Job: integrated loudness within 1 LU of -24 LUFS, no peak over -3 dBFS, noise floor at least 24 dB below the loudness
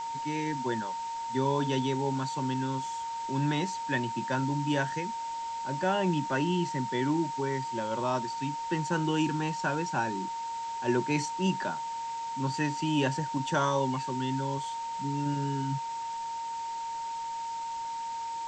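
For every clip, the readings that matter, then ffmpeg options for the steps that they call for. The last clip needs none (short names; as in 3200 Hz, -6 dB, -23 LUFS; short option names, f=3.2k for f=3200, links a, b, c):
steady tone 920 Hz; tone level -33 dBFS; noise floor -36 dBFS; noise floor target -56 dBFS; loudness -31.5 LUFS; peak -15.5 dBFS; loudness target -24.0 LUFS
-> -af "bandreject=f=920:w=30"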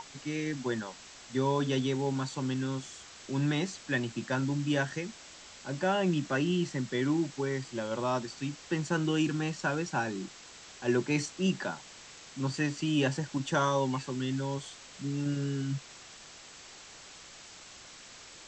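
steady tone none; noise floor -51 dBFS; noise floor target -56 dBFS
-> -af "afftdn=nr=6:nf=-51"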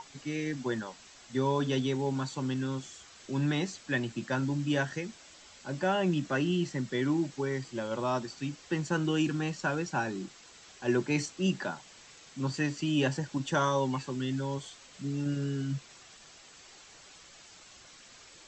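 noise floor -54 dBFS; noise floor target -56 dBFS
-> -af "afftdn=nr=6:nf=-54"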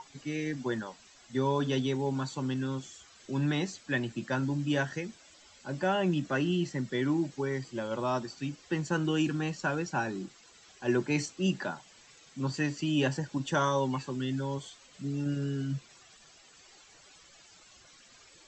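noise floor -58 dBFS; loudness -32.0 LUFS; peak -15.5 dBFS; loudness target -24.0 LUFS
-> -af "volume=8dB"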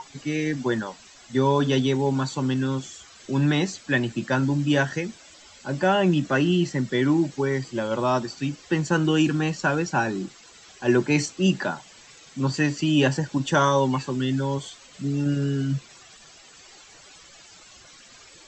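loudness -24.0 LUFS; peak -7.5 dBFS; noise floor -50 dBFS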